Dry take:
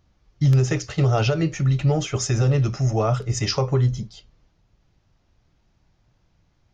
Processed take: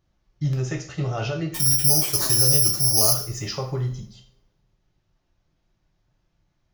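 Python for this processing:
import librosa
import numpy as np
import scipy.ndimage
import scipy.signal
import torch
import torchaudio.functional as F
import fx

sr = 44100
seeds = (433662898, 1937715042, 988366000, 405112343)

y = fx.resample_bad(x, sr, factor=8, down='none', up='zero_stuff', at=(1.54, 3.13))
y = fx.rev_double_slope(y, sr, seeds[0], early_s=0.45, late_s=1.6, knee_db=-27, drr_db=1.5)
y = y * 10.0 ** (-8.0 / 20.0)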